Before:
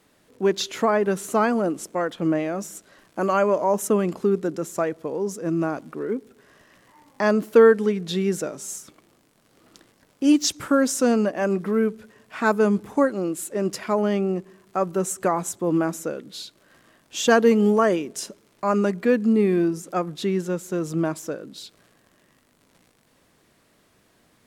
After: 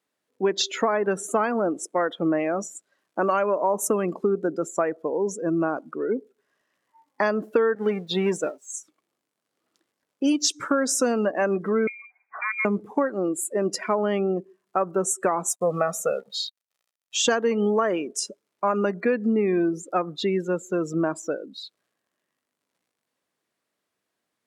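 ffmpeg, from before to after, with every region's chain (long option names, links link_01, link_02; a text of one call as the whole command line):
ffmpeg -i in.wav -filter_complex "[0:a]asettb=1/sr,asplit=3[link_01][link_02][link_03];[link_01]atrim=end=7.754[link_04];[link_02]atrim=start=7.75:end=8.74,asetpts=PTS-STARTPTS,afade=type=in:duration=0.004:curve=qsin,afade=type=out:start_time=0.986:duration=0.004:curve=qsin,aeval=exprs='val(0)+0.5*0.0355*sgn(val(0))':channel_layout=same,agate=range=-33dB:threshold=-22dB:ratio=3:release=100:detection=peak[link_05];[link_03]atrim=start=8.736[link_06];[link_04][link_05]acrossfade=duration=0.004:curve1=hsin:curve2=qsin[link_07];[link_07][link_06]acrossfade=duration=0.004:curve1=qsin:curve2=hsin,asettb=1/sr,asplit=3[link_08][link_09][link_10];[link_08]atrim=end=11.874[link_11];[link_09]atrim=start=11.87:end=12.65,asetpts=PTS-STARTPTS,afade=type=in:duration=0.004:curve=qsin,afade=type=out:start_time=0.776:duration=0.004:curve=qsin,lowpass=frequency=2200:width_type=q:width=0.5098,lowpass=frequency=2200:width_type=q:width=0.6013,lowpass=frequency=2200:width_type=q:width=0.9,lowpass=frequency=2200:width_type=q:width=2.563,afreqshift=-2600,acompressor=threshold=-36dB:ratio=2:attack=3.2:release=140:knee=1:detection=peak,aemphasis=mode=reproduction:type=50fm[link_12];[link_10]atrim=start=12.646[link_13];[link_11][link_12]acrossfade=duration=0.004:curve1=hsin:curve2=qsin[link_14];[link_14][link_13]acrossfade=duration=0.004:curve1=qsin:curve2=hsin,asettb=1/sr,asplit=3[link_15][link_16][link_17];[link_15]atrim=end=15.494[link_18];[link_16]atrim=start=15.49:end=17.17,asetpts=PTS-STARTPTS,afade=type=in:duration=0.004:curve=qsin,afade=type=out:start_time=1.676:duration=0.004:curve=qsin,equalizer=frequency=97:width_type=o:width=0.59:gain=-3.5,aecho=1:1:1.6:0.9,atrim=end_sample=74088,acrusher=bits=6:mix=0:aa=0.5[link_19];[link_17]atrim=start=17.166[link_20];[link_18][link_19]acrossfade=duration=0.004:curve1=hsin:curve2=qsin[link_21];[link_21][link_20]acrossfade=duration=0.004:curve1=qsin:curve2=hsin,highpass=frequency=400:poles=1,afftdn=noise_reduction=23:noise_floor=-37,acompressor=threshold=-23dB:ratio=10,volume=5dB" out.wav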